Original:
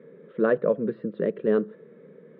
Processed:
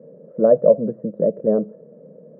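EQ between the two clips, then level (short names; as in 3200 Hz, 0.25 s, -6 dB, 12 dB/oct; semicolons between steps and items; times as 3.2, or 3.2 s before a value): synth low-pass 620 Hz, resonance Q 4.9; tilt -2 dB/oct; bell 390 Hz -10.5 dB 0.44 oct; 0.0 dB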